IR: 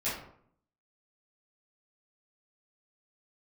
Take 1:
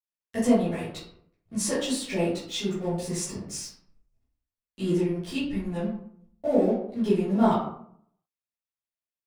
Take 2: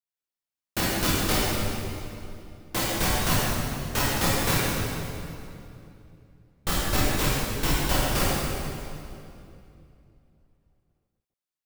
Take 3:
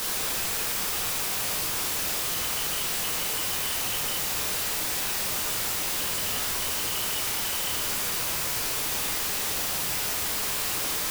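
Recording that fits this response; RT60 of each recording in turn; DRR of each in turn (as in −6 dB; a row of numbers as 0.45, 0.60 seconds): 1; 0.65, 2.7, 1.1 seconds; −12.5, −8.5, −2.0 decibels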